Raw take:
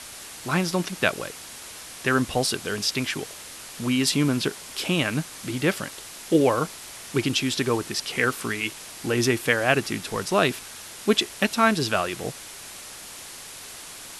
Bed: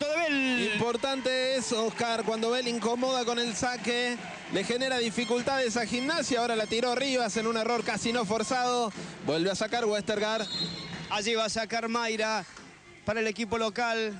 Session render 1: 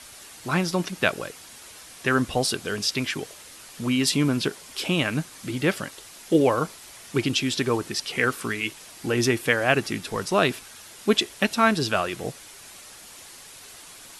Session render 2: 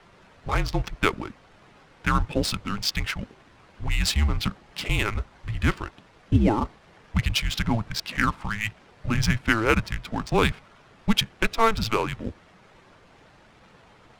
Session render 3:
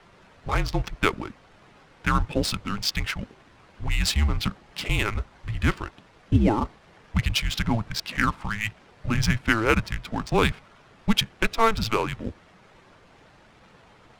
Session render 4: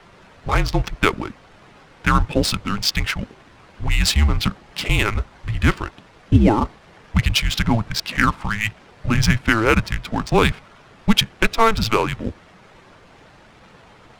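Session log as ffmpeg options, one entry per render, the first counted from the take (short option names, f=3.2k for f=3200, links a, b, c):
-af "afftdn=nr=6:nf=-41"
-af "afreqshift=-220,adynamicsmooth=sensitivity=4.5:basefreq=1.4k"
-af anull
-af "volume=6dB,alimiter=limit=-2dB:level=0:latency=1"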